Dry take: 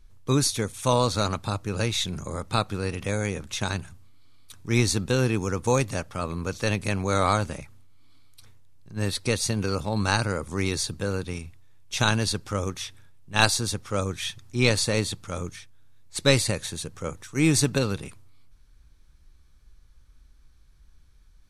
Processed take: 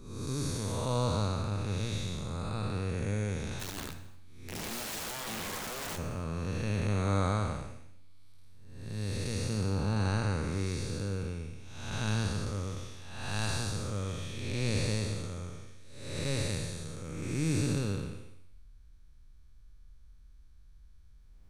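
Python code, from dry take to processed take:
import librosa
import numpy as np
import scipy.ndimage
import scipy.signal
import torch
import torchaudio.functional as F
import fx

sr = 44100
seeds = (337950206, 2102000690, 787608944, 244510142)

y = fx.spec_blur(x, sr, span_ms=395.0)
y = fx.low_shelf(y, sr, hz=150.0, db=7.5)
y = fx.overflow_wrap(y, sr, gain_db=28.0, at=(3.59, 5.97), fade=0.02)
y = fx.rev_gated(y, sr, seeds[0], gate_ms=320, shape='falling', drr_db=11.5)
y = F.gain(torch.from_numpy(y), -6.0).numpy()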